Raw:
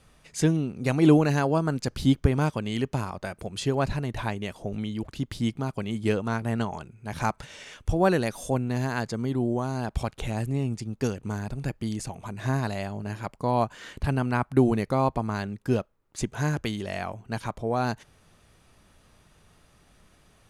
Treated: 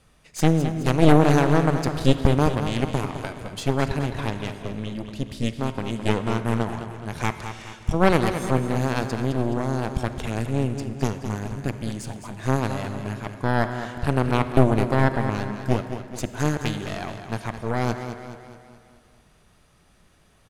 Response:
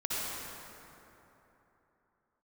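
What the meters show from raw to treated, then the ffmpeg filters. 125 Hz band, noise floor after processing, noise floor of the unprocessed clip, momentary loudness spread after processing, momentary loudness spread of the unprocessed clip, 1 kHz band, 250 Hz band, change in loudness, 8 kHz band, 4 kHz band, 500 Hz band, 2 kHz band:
+4.0 dB, −58 dBFS, −61 dBFS, 13 LU, 11 LU, +3.5 dB, +2.5 dB, +3.0 dB, +2.0 dB, +4.0 dB, +3.5 dB, +4.0 dB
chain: -filter_complex "[0:a]aeval=exprs='0.447*(cos(1*acos(clip(val(0)/0.447,-1,1)))-cos(1*PI/2))+0.224*(cos(4*acos(clip(val(0)/0.447,-1,1)))-cos(4*PI/2))':channel_layout=same,aecho=1:1:212|424|636|848|1060|1272:0.335|0.167|0.0837|0.0419|0.0209|0.0105,asplit=2[link_01][link_02];[1:a]atrim=start_sample=2205,asetrate=66150,aresample=44100[link_03];[link_02][link_03]afir=irnorm=-1:irlink=0,volume=-14dB[link_04];[link_01][link_04]amix=inputs=2:normalize=0,volume=-1.5dB"

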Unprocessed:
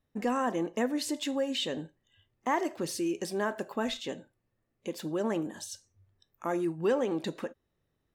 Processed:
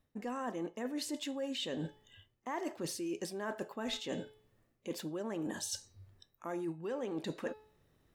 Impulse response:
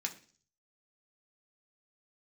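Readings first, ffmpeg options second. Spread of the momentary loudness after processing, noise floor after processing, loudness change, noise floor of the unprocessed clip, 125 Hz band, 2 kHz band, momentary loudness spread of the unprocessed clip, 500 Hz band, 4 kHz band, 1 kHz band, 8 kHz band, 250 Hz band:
7 LU, −77 dBFS, −7.5 dB, −80 dBFS, −4.5 dB, −7.5 dB, 12 LU, −8.0 dB, −4.5 dB, −9.5 dB, −2.5 dB, −7.0 dB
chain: -af "bandreject=frequency=429.9:width_type=h:width=4,bandreject=frequency=859.8:width_type=h:width=4,bandreject=frequency=1289.7:width_type=h:width=4,bandreject=frequency=1719.6:width_type=h:width=4,bandreject=frequency=2149.5:width_type=h:width=4,bandreject=frequency=2579.4:width_type=h:width=4,bandreject=frequency=3009.3:width_type=h:width=4,bandreject=frequency=3439.2:width_type=h:width=4,bandreject=frequency=3869.1:width_type=h:width=4,bandreject=frequency=4299:width_type=h:width=4,bandreject=frequency=4728.9:width_type=h:width=4,bandreject=frequency=5158.8:width_type=h:width=4,bandreject=frequency=5588.7:width_type=h:width=4,areverse,acompressor=threshold=-44dB:ratio=10,areverse,volume=8dB"

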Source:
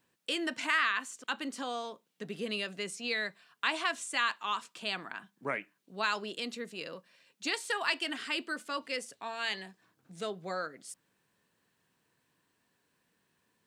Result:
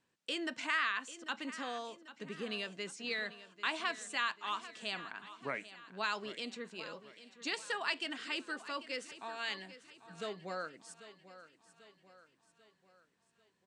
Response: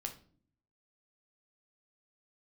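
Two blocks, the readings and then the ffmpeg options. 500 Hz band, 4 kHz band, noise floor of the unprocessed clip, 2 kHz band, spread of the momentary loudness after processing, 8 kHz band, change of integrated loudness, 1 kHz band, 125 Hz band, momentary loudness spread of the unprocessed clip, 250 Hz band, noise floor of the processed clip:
−4.5 dB, −4.5 dB, −77 dBFS, −4.5 dB, 16 LU, −6.0 dB, −4.5 dB, −4.5 dB, −4.5 dB, 13 LU, −4.5 dB, −77 dBFS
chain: -af "lowpass=frequency=8500:width=0.5412,lowpass=frequency=8500:width=1.3066,aecho=1:1:792|1584|2376|3168|3960:0.178|0.0871|0.0427|0.0209|0.0103,volume=-4.5dB"

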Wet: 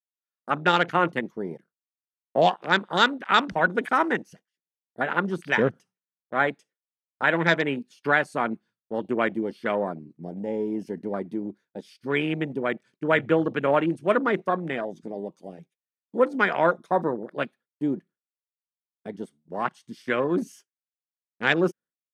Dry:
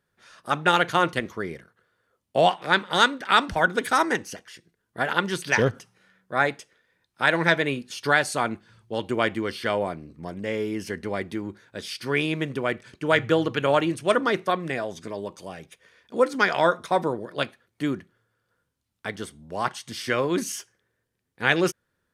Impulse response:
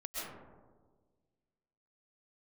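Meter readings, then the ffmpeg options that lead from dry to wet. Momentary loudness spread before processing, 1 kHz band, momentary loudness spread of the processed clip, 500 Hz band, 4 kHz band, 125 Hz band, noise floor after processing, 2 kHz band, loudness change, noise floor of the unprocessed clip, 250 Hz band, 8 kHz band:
15 LU, −1.0 dB, 15 LU, −0.5 dB, −3.5 dB, −2.0 dB, below −85 dBFS, −1.0 dB, −0.5 dB, −77 dBFS, +1.0 dB, below −10 dB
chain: -af "afwtdn=0.0282,agate=range=-33dB:threshold=-45dB:ratio=3:detection=peak,lowshelf=frequency=120:width_type=q:width=1.5:gain=-13.5,volume=-1dB"

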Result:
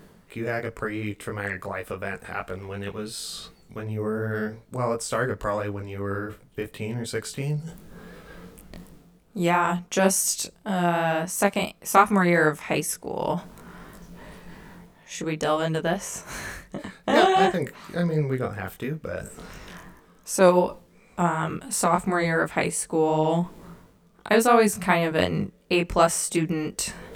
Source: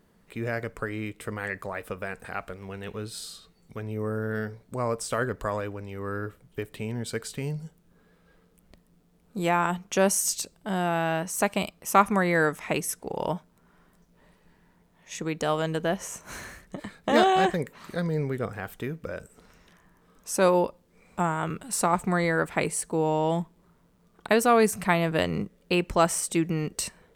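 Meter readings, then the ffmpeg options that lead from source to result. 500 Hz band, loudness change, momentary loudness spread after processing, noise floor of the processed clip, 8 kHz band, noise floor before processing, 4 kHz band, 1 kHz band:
+2.5 dB, +2.5 dB, 18 LU, −56 dBFS, +2.5 dB, −63 dBFS, +2.5 dB, +2.5 dB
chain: -af "areverse,acompressor=mode=upward:threshold=-32dB:ratio=2.5,areverse,flanger=delay=19.5:depth=3.7:speed=2.8,volume=5.5dB"

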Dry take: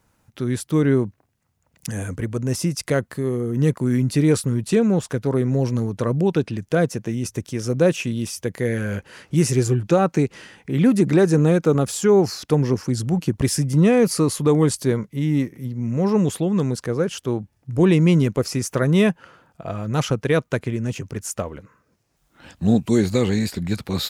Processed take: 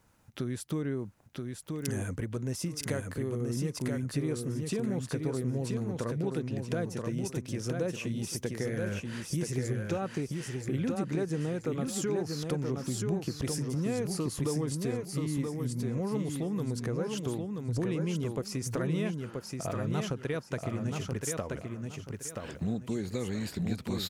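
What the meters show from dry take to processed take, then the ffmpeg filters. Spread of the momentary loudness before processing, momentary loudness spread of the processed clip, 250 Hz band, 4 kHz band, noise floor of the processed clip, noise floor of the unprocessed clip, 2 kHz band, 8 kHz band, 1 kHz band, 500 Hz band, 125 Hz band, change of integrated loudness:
11 LU, 5 LU, −13.0 dB, −10.0 dB, −48 dBFS, −67 dBFS, −11.5 dB, −9.0 dB, −13.0 dB, −13.5 dB, −11.5 dB, −13.0 dB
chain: -af "acompressor=threshold=-29dB:ratio=5,aecho=1:1:979|1958|2937|3916:0.631|0.177|0.0495|0.0139,volume=-2.5dB"

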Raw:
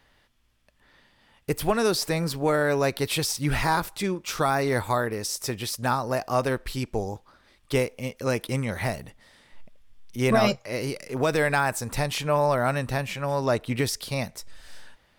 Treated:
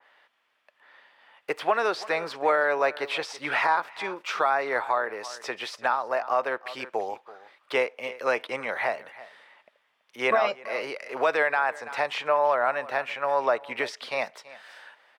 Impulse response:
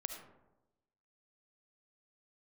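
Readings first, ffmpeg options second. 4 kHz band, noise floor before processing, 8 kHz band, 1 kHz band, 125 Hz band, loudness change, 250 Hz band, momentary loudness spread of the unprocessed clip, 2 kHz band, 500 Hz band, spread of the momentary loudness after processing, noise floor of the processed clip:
−4.5 dB, −64 dBFS, −14.0 dB, +2.0 dB, −25.5 dB, −1.0 dB, −13.0 dB, 8 LU, +2.5 dB, −1.0 dB, 11 LU, −71 dBFS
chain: -filter_complex "[0:a]highpass=390,acrossover=split=7800[link_01][link_02];[link_02]acompressor=threshold=-53dB:ratio=6[link_03];[link_01][link_03]amix=inputs=2:normalize=0,acrossover=split=520 3100:gain=0.224 1 0.141[link_04][link_05][link_06];[link_04][link_05][link_06]amix=inputs=3:normalize=0,aecho=1:1:331:0.112,alimiter=limit=-18.5dB:level=0:latency=1:release=499,adynamicequalizer=threshold=0.00891:dfrequency=2100:dqfactor=0.7:tfrequency=2100:tqfactor=0.7:attack=5:release=100:ratio=0.375:range=2.5:mode=cutabove:tftype=highshelf,volume=6.5dB"

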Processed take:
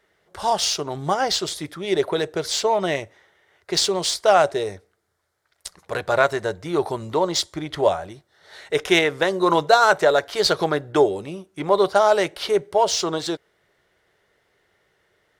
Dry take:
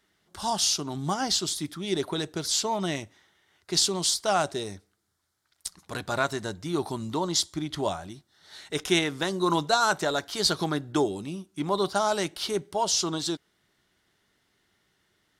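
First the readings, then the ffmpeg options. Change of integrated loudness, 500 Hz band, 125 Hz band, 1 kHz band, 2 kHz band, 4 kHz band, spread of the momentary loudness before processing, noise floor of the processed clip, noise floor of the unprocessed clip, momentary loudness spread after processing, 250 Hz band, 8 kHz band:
+6.0 dB, +10.5 dB, +1.0 dB, +7.5 dB, +8.0 dB, +3.0 dB, 12 LU, −68 dBFS, −73 dBFS, 13 LU, +2.5 dB, 0.0 dB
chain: -filter_complex "[0:a]asplit=2[link_01][link_02];[link_02]adynamicsmooth=sensitivity=3.5:basefreq=2500,volume=-3dB[link_03];[link_01][link_03]amix=inputs=2:normalize=0,equalizer=frequency=250:width_type=o:width=1:gain=-9,equalizer=frequency=500:width_type=o:width=1:gain=12,equalizer=frequency=2000:width_type=o:width=1:gain=6,volume=-1dB"

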